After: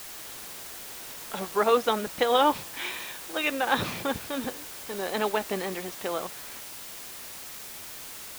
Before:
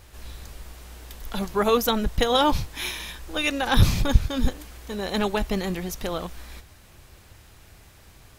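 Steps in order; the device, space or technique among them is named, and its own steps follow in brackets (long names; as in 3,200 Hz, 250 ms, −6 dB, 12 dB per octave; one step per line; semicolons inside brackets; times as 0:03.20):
wax cylinder (band-pass filter 340–2,800 Hz; tape wow and flutter; white noise bed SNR 11 dB)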